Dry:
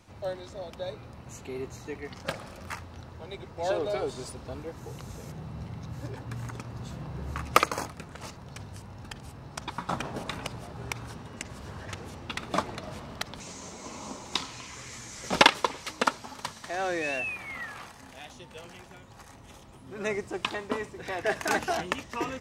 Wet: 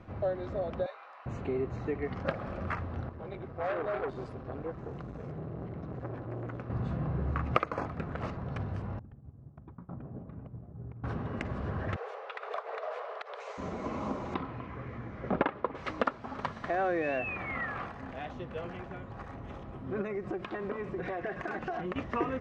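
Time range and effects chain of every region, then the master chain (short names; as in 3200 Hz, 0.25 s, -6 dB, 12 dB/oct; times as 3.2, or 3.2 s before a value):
0.86–1.26 HPF 820 Hz 24 dB/oct + doubler 20 ms -10.5 dB
3.09–6.7 flange 1.1 Hz, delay 4.2 ms, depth 3.8 ms, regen -61% + core saturation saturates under 2300 Hz
8.99–11.04 expander -36 dBFS + compressor 2:1, threshold -49 dBFS + band-pass 110 Hz, Q 0.67
11.96–13.58 steep high-pass 420 Hz 96 dB/oct + compressor, threshold -38 dBFS
14.34–15.75 HPF 48 Hz + tape spacing loss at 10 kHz 36 dB
20.01–21.96 comb 5.5 ms, depth 45% + compressor 8:1, threshold -38 dBFS
whole clip: LPF 1500 Hz 12 dB/oct; notch 900 Hz, Q 7; compressor 2.5:1, threshold -38 dBFS; gain +8 dB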